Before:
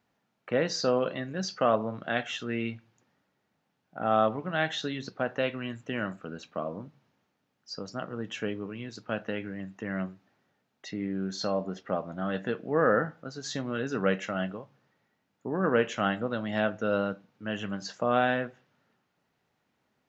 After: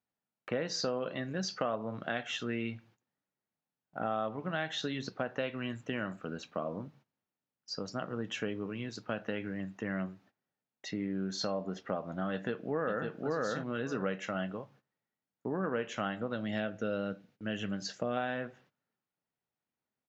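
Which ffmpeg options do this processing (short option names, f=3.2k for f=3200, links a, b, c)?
-filter_complex "[0:a]asplit=2[a][b];[b]afade=t=in:st=12.32:d=0.01,afade=t=out:st=13.08:d=0.01,aecho=0:1:550|1100:0.891251|0.0891251[c];[a][c]amix=inputs=2:normalize=0,asettb=1/sr,asplit=3[d][e][f];[d]atrim=end=16.364[g];[e]atrim=start=16.36:end=18.17,asetpts=PTS-STARTPTS,afade=t=in:d=0.004:c=qsin,afade=t=out:st=1.806:d=0.004:c=qsin,equalizer=f=1k:t=o:w=0.75:g=-10[h];[f]atrim=start=18.166[i];[g][h]acrossfade=d=0.004:c1=hsin:c2=qsin[j];[j][i]acrossfade=d=0.004:c1=qsin:c2=hsin,agate=range=-18dB:threshold=-59dB:ratio=16:detection=peak,acompressor=threshold=-31dB:ratio=4"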